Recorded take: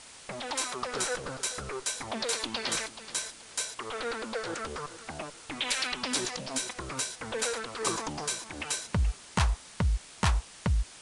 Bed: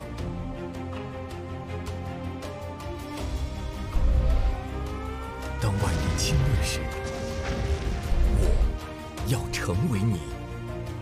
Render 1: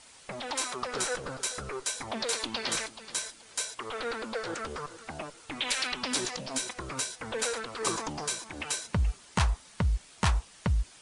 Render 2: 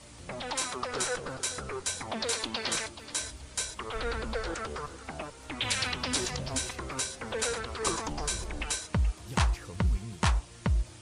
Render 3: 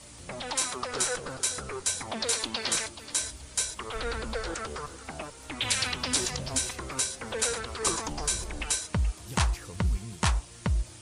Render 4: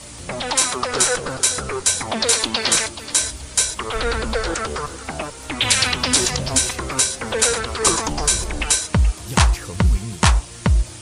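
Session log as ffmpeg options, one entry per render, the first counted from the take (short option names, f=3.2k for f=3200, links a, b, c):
-af "afftdn=nr=6:nf=-50"
-filter_complex "[1:a]volume=-16.5dB[a];[0:a][a]amix=inputs=2:normalize=0"
-af "highshelf=f=6.2k:g=8"
-af "volume=11dB,alimiter=limit=-1dB:level=0:latency=1"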